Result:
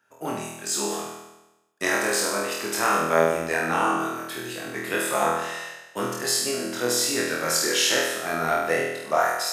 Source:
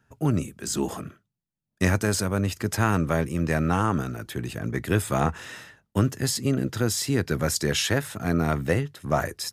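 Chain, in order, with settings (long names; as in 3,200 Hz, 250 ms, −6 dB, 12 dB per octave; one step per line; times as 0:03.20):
high-pass filter 460 Hz 12 dB per octave
flutter between parallel walls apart 4.2 metres, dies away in 0.99 s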